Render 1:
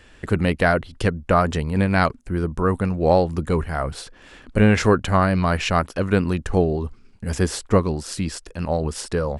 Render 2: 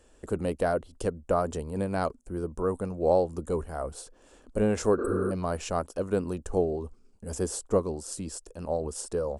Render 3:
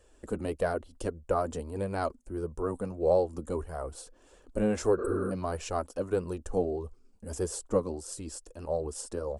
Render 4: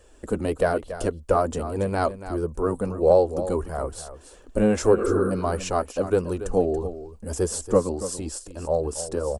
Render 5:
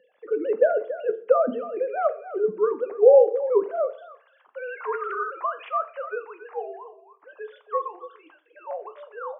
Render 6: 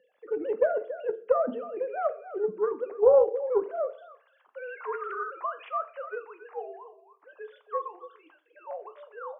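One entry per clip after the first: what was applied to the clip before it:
spectral replace 5.01–5.29 s, 230–7900 Hz before; graphic EQ 125/500/2000/4000/8000 Hz -9/+5/-12/-6/+8 dB; trim -8.5 dB
flange 1.6 Hz, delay 1.6 ms, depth 2.6 ms, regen -30%; trim +1 dB
delay 282 ms -12.5 dB; trim +7.5 dB
formants replaced by sine waves; high-pass sweep 200 Hz -> 1.1 kHz, 3.39–4.12 s; on a send at -9.5 dB: reverberation RT60 0.50 s, pre-delay 6 ms
loudspeaker Doppler distortion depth 0.11 ms; trim -5 dB

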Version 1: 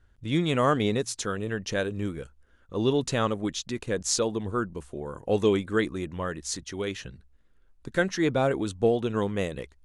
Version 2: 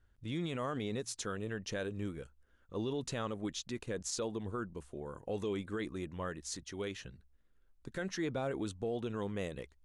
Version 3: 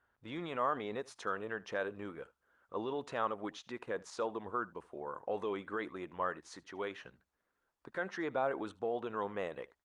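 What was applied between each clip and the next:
peak limiter -20 dBFS, peak gain reduction 9 dB; trim -8 dB
band-pass filter 1 kHz, Q 1.3; delay 77 ms -22.5 dB; trim +8.5 dB; Opus 48 kbps 48 kHz

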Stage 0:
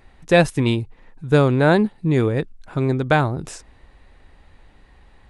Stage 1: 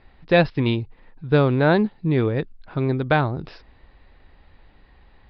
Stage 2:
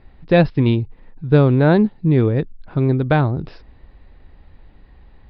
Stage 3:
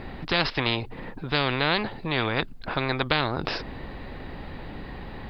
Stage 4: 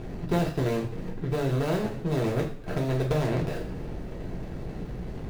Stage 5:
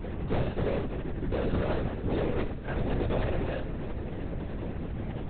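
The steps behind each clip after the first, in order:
steep low-pass 5 kHz 96 dB/octave; trim -2 dB
bass shelf 500 Hz +9 dB; trim -2 dB
spectrum-flattening compressor 4:1; trim -5 dB
median filter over 41 samples; two-slope reverb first 0.42 s, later 1.9 s, from -21 dB, DRR -1.5 dB
power-law waveshaper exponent 0.7; LPC vocoder at 8 kHz whisper; trim -5.5 dB

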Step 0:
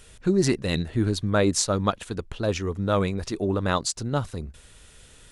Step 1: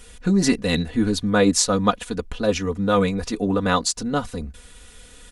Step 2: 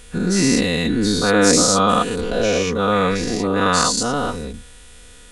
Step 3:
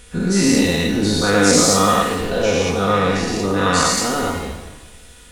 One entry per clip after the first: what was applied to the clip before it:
comb 4.1 ms, depth 82%; trim +2.5 dB
every event in the spectrogram widened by 240 ms; trim -3.5 dB
pitch-shifted reverb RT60 1 s, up +7 st, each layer -8 dB, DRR 3.5 dB; trim -1 dB

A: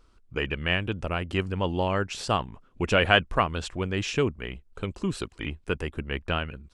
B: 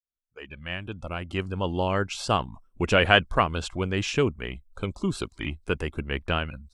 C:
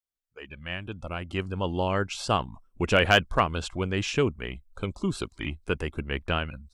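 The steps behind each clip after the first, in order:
fade-in on the opening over 2.11 s; spectral noise reduction 18 dB; trim +1.5 dB
overload inside the chain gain 8 dB; trim -1 dB

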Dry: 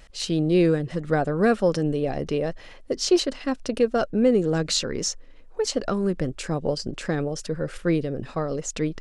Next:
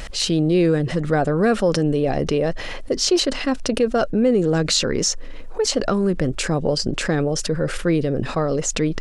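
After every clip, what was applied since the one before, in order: level flattener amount 50%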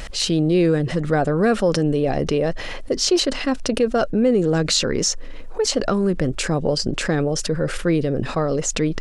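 no audible change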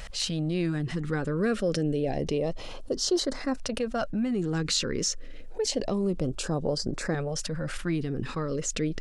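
LFO notch saw up 0.28 Hz 300–3300 Hz; trim -7.5 dB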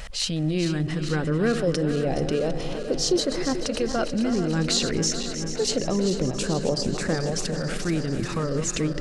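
backward echo that repeats 218 ms, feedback 84%, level -10 dB; trim +3 dB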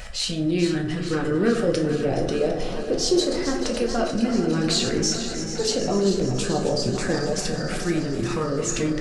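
coarse spectral quantiser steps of 15 dB; plate-style reverb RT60 0.58 s, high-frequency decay 0.6×, DRR 1 dB

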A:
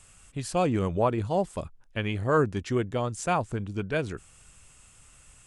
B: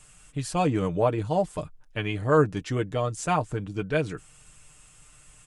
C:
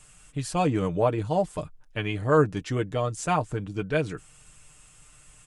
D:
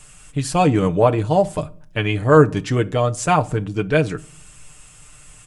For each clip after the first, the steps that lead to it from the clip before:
comb 6.6 ms, depth 59%
no audible change
reverberation RT60 0.50 s, pre-delay 7 ms, DRR 16.5 dB; trim +8 dB

